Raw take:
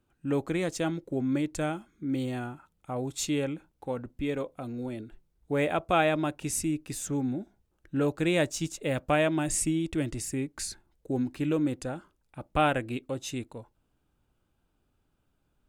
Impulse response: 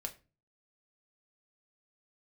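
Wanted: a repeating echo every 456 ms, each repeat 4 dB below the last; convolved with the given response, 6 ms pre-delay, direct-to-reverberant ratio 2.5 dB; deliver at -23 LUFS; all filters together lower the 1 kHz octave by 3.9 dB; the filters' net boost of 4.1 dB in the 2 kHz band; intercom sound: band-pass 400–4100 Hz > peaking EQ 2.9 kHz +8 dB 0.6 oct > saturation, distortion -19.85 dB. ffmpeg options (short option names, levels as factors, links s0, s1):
-filter_complex "[0:a]equalizer=f=1000:t=o:g=-7,equalizer=f=2000:t=o:g=3.5,aecho=1:1:456|912|1368|1824|2280|2736|3192|3648|4104:0.631|0.398|0.25|0.158|0.0994|0.0626|0.0394|0.0249|0.0157,asplit=2[s0][s1];[1:a]atrim=start_sample=2205,adelay=6[s2];[s1][s2]afir=irnorm=-1:irlink=0,volume=0.891[s3];[s0][s3]amix=inputs=2:normalize=0,highpass=400,lowpass=4100,equalizer=f=2900:t=o:w=0.6:g=8,asoftclip=threshold=0.188,volume=2.37"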